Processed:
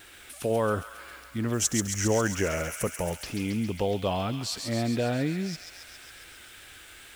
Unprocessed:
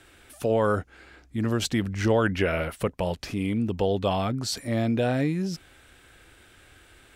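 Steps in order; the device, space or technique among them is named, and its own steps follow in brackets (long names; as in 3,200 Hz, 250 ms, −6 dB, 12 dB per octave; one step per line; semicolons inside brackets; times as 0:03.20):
noise-reduction cassette on a plain deck (one half of a high-frequency compander encoder only; tape wow and flutter; white noise bed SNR 31 dB)
0:01.53–0:03.12: high shelf with overshoot 5,000 Hz +7.5 dB, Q 3
delay with a high-pass on its return 136 ms, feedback 72%, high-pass 1,900 Hz, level −5 dB
level −3 dB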